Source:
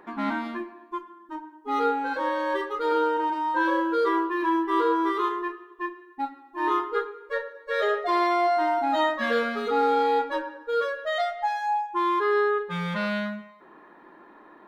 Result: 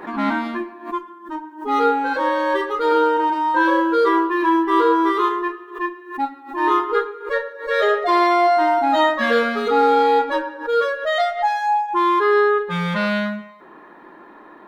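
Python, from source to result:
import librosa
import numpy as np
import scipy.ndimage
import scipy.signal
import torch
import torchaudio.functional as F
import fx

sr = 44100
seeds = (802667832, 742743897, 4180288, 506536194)

y = fx.pre_swell(x, sr, db_per_s=130.0)
y = y * librosa.db_to_amplitude(7.0)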